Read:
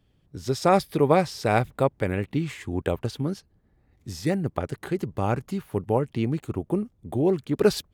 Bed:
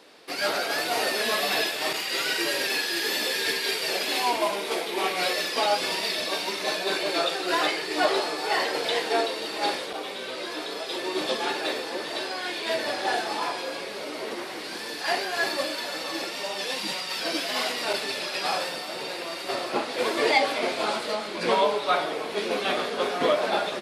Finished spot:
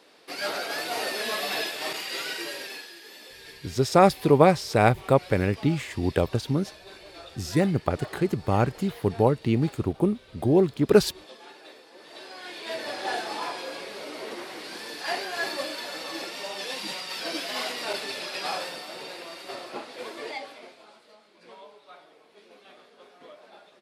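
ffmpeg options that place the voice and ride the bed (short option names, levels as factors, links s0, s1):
-filter_complex "[0:a]adelay=3300,volume=1.33[s0];[1:a]volume=3.98,afade=t=out:st=2.06:d=0.92:silence=0.16788,afade=t=in:st=11.93:d=1.19:silence=0.158489,afade=t=out:st=18.47:d=2.37:silence=0.0749894[s1];[s0][s1]amix=inputs=2:normalize=0"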